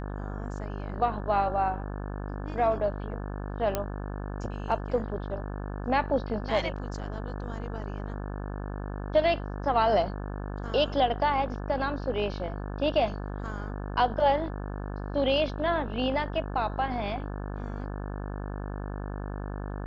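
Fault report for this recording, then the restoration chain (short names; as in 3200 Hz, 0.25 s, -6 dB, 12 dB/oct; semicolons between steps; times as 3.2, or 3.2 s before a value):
buzz 50 Hz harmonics 35 -35 dBFS
3.75 pop -12 dBFS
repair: de-click; de-hum 50 Hz, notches 35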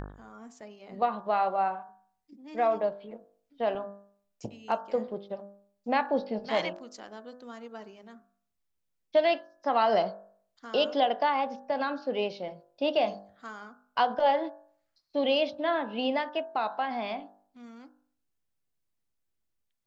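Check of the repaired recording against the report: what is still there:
none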